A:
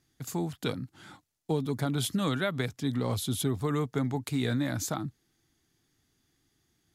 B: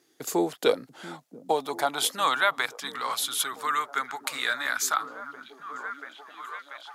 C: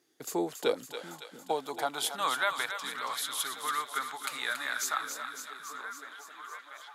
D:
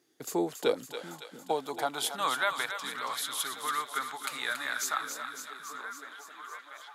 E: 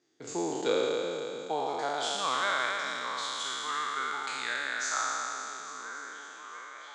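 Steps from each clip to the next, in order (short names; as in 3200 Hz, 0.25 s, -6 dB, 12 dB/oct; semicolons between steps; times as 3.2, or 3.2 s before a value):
delay with a stepping band-pass 0.686 s, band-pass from 190 Hz, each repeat 0.7 oct, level -1.5 dB; high-pass sweep 390 Hz -> 1300 Hz, 0.12–3.19; gain +7 dB
thinning echo 0.279 s, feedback 70%, high-pass 960 Hz, level -7 dB; gain -6 dB
low shelf 350 Hz +3.5 dB
spectral trails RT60 2.99 s; steep low-pass 7800 Hz 48 dB/oct; gain -5 dB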